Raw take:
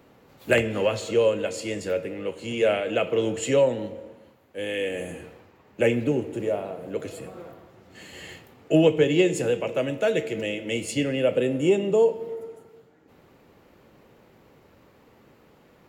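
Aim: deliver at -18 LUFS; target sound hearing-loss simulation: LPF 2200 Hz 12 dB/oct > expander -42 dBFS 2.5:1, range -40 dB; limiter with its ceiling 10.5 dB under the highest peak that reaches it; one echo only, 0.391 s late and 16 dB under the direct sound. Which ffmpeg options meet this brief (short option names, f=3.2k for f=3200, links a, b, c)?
-af "alimiter=limit=-17.5dB:level=0:latency=1,lowpass=2.2k,aecho=1:1:391:0.158,agate=range=-40dB:threshold=-42dB:ratio=2.5,volume=10.5dB"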